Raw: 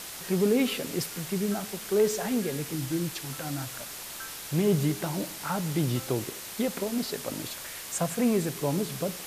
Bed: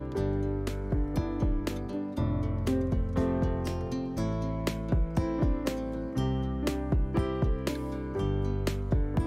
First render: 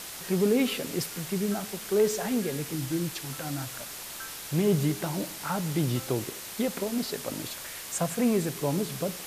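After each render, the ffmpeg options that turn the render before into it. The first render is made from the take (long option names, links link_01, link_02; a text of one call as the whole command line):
ffmpeg -i in.wav -af anull out.wav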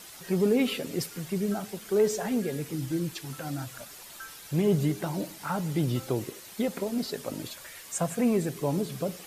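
ffmpeg -i in.wav -af "afftdn=noise_reduction=9:noise_floor=-41" out.wav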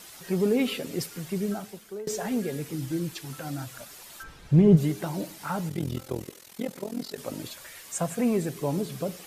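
ffmpeg -i in.wav -filter_complex "[0:a]asplit=3[link_01][link_02][link_03];[link_01]afade=type=out:start_time=4.22:duration=0.02[link_04];[link_02]aemphasis=mode=reproduction:type=riaa,afade=type=in:start_time=4.22:duration=0.02,afade=type=out:start_time=4.76:duration=0.02[link_05];[link_03]afade=type=in:start_time=4.76:duration=0.02[link_06];[link_04][link_05][link_06]amix=inputs=3:normalize=0,asettb=1/sr,asplit=3[link_07][link_08][link_09];[link_07]atrim=end=5.694[link_10];[link_08]atrim=start=5.69:end=7.18,asetpts=PTS-STARTPTS,afade=type=in:duration=0.004:curve=qsin,afade=type=out:start_time=1.486:duration=0.004:curve=qsin,tremolo=f=42:d=0.889[link_11];[link_09]atrim=start=7.176[link_12];[link_10][link_11]acrossfade=duration=0.004:curve1=hsin:curve2=qsin[link_13];[link_13][link_12]acrossfade=duration=0.004:curve1=qsin:curve2=hsin,asplit=2[link_14][link_15];[link_14]atrim=end=2.07,asetpts=PTS-STARTPTS,afade=type=out:start_time=1.45:duration=0.62:silence=0.0891251[link_16];[link_15]atrim=start=2.07,asetpts=PTS-STARTPTS,afade=type=in:duration=0.004:curve=hsin:silence=0.0891251[link_17];[link_16][link_17]concat=n=2:v=0:a=1" out.wav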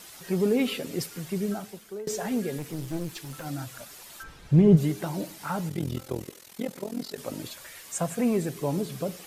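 ffmpeg -i in.wav -filter_complex "[0:a]asettb=1/sr,asplit=3[link_01][link_02][link_03];[link_01]atrim=end=2.584[link_04];[link_02]atrim=start=2.58:end=3.46,asetpts=PTS-STARTPTS,afade=type=in:duration=0.004:curve=qsin,afade=type=out:start_time=0.876:duration=0.004:curve=qsin,aeval=exprs='clip(val(0),-1,0.0133)':channel_layout=same[link_05];[link_03]atrim=start=3.456[link_06];[link_04][link_05]acrossfade=duration=0.004:curve1=hsin:curve2=qsin[link_07];[link_07][link_06]acrossfade=duration=0.004:curve1=qsin:curve2=hsin" out.wav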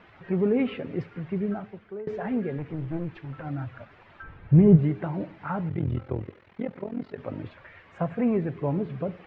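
ffmpeg -i in.wav -af "lowpass=frequency=2300:width=0.5412,lowpass=frequency=2300:width=1.3066,equalizer=frequency=95:width=2:gain=11" out.wav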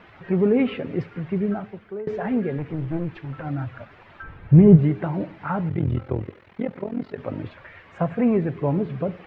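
ffmpeg -i in.wav -af "volume=4.5dB,alimiter=limit=-3dB:level=0:latency=1" out.wav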